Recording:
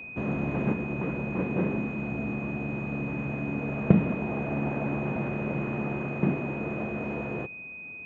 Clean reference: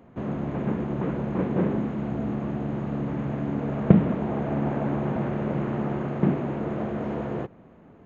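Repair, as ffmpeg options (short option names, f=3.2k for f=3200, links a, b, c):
-af "bandreject=f=2.5k:w=30,asetnsamples=n=441:p=0,asendcmd='0.73 volume volume 3.5dB',volume=0dB"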